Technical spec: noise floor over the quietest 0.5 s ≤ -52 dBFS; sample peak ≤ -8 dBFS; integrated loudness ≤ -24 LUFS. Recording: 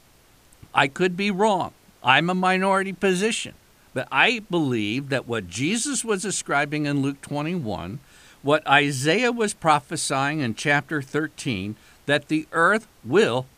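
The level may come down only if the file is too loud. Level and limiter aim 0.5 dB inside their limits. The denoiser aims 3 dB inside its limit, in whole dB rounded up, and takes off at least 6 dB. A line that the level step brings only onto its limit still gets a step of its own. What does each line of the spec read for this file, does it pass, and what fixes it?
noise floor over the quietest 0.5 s -55 dBFS: pass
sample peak -3.0 dBFS: fail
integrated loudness -22.5 LUFS: fail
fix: trim -2 dB; peak limiter -8.5 dBFS

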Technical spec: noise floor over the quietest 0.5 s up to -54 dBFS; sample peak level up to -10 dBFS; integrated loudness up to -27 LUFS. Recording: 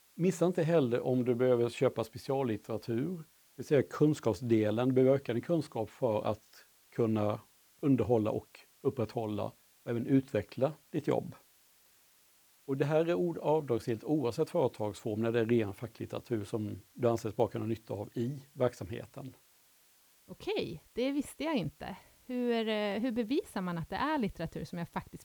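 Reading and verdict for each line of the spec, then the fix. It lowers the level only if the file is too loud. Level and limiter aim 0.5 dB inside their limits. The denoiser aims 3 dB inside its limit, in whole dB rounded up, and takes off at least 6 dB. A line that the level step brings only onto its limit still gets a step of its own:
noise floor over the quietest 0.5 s -65 dBFS: pass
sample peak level -14.5 dBFS: pass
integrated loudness -33.0 LUFS: pass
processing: none needed

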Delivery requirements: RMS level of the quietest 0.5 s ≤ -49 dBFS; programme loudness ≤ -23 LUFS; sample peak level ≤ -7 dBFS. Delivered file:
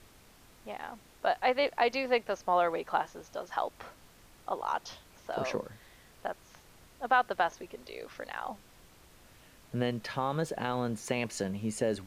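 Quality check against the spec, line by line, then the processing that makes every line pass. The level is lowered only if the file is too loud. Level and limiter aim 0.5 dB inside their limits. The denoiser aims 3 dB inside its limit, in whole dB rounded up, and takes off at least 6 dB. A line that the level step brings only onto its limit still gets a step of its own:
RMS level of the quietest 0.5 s -58 dBFS: pass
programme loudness -33.0 LUFS: pass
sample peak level -12.0 dBFS: pass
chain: none needed

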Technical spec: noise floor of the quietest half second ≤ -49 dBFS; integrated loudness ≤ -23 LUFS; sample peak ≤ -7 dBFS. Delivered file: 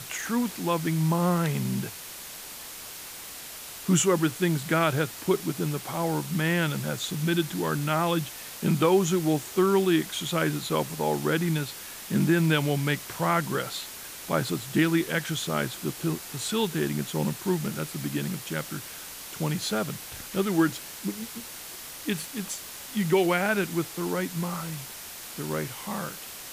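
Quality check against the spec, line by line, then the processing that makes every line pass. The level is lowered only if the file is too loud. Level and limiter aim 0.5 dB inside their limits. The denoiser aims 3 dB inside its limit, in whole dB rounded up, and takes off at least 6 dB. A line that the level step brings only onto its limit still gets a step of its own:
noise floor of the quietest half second -41 dBFS: fail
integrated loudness -27.5 LUFS: pass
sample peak -10.5 dBFS: pass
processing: noise reduction 11 dB, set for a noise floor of -41 dBFS

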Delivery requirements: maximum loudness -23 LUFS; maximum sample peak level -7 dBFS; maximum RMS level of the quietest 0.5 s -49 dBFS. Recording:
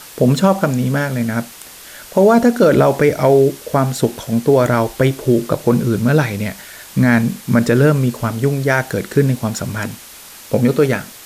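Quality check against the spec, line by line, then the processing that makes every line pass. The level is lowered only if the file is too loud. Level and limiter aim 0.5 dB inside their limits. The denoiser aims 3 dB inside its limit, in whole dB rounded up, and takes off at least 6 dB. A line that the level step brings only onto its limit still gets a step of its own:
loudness -15.5 LUFS: fail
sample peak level -2.5 dBFS: fail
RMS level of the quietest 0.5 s -38 dBFS: fail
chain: noise reduction 6 dB, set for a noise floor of -38 dBFS; trim -8 dB

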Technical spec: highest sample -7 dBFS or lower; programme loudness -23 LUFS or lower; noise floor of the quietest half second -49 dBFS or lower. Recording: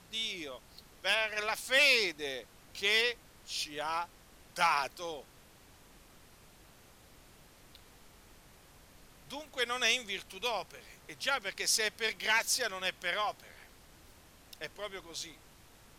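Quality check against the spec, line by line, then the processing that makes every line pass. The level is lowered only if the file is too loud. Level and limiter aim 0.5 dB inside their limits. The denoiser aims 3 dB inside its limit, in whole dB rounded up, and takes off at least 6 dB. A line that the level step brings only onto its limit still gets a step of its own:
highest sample -15.5 dBFS: pass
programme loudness -31.5 LUFS: pass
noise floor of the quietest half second -59 dBFS: pass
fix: none needed

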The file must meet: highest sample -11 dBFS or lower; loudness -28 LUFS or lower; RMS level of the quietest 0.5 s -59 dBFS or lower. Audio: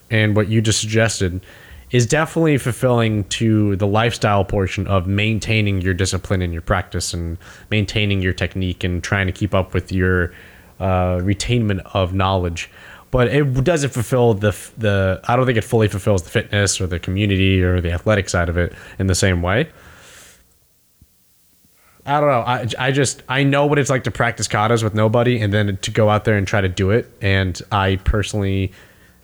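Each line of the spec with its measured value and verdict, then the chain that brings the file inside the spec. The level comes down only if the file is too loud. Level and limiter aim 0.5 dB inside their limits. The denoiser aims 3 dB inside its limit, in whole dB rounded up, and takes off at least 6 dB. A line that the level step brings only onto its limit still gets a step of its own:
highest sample -5.0 dBFS: fail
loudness -18.5 LUFS: fail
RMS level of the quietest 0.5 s -57 dBFS: fail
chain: trim -10 dB

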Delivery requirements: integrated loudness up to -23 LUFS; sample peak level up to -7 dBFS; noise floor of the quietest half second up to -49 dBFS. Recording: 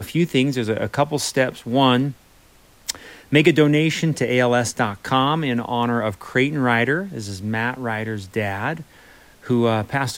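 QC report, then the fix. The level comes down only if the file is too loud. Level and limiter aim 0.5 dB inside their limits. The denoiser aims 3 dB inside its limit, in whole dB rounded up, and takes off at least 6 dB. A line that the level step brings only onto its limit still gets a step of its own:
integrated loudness -20.5 LUFS: fail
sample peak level -3.5 dBFS: fail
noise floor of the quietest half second -52 dBFS: pass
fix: trim -3 dB; peak limiter -7.5 dBFS

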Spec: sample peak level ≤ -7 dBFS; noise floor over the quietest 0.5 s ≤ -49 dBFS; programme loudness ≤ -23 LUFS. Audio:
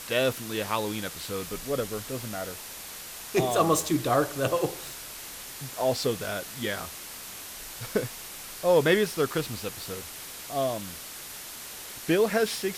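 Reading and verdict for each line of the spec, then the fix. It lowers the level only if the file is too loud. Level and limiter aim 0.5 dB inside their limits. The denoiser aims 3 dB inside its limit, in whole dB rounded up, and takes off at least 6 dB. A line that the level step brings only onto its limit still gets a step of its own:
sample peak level -9.0 dBFS: pass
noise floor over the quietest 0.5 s -41 dBFS: fail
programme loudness -29.5 LUFS: pass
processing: noise reduction 11 dB, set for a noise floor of -41 dBFS

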